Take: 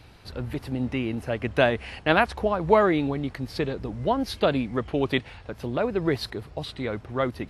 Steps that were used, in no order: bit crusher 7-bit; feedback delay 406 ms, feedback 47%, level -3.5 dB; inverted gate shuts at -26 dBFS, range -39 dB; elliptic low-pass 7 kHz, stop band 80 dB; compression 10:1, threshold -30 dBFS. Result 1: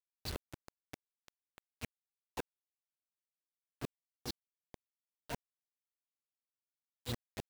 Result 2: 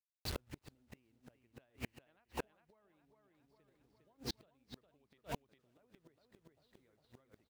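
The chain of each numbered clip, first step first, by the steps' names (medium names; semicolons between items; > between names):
feedback delay > compression > inverted gate > elliptic low-pass > bit crusher; elliptic low-pass > bit crusher > feedback delay > compression > inverted gate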